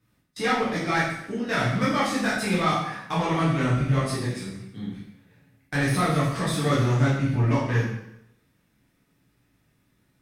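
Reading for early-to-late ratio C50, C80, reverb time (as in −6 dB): 2.0 dB, 5.5 dB, 0.80 s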